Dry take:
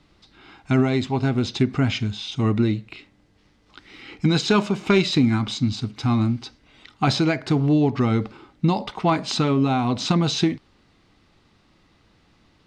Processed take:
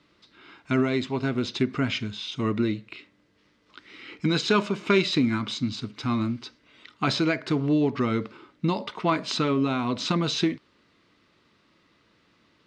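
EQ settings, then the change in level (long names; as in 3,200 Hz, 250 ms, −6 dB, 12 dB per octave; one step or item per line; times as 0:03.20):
high-pass filter 320 Hz 6 dB per octave
parametric band 780 Hz −14 dB 0.22 octaves
high-shelf EQ 6,600 Hz −10 dB
0.0 dB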